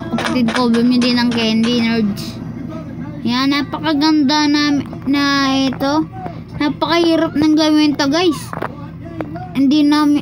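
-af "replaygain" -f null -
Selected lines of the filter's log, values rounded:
track_gain = -3.8 dB
track_peak = 0.544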